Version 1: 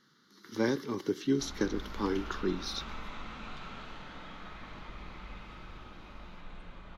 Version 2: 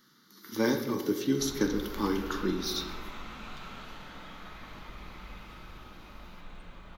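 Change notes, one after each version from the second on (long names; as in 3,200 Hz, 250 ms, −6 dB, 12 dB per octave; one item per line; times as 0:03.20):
speech: send on
master: remove high-frequency loss of the air 64 metres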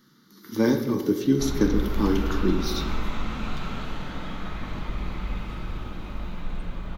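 background +7.0 dB
master: add low-shelf EQ 420 Hz +10 dB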